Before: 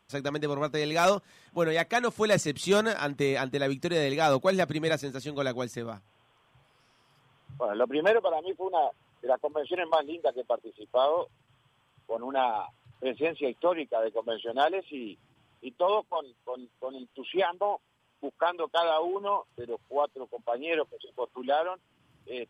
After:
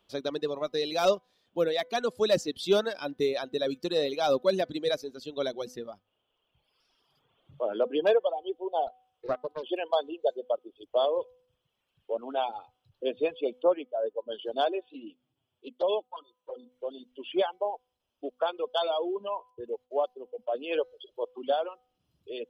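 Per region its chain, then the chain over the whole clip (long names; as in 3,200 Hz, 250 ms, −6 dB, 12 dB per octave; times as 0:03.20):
0:08.87–0:09.63: parametric band 220 Hz −10.5 dB 1.6 octaves + highs frequency-modulated by the lows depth 0.46 ms
0:13.63–0:14.39: high-frequency loss of the air 240 metres + multiband upward and downward expander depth 70%
0:14.89–0:16.72: high-pass filter 79 Hz + flanger swept by the level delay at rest 8.5 ms, full sweep at −23 dBFS
0:19.31–0:20.52: parametric band 4,000 Hz −7.5 dB 0.47 octaves + downward expander −58 dBFS
whole clip: hum removal 250.6 Hz, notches 9; reverb reduction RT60 1.8 s; octave-band graphic EQ 125/500/1,000/2,000/4,000/8,000 Hz −11/+4/−5/−9/+7/−10 dB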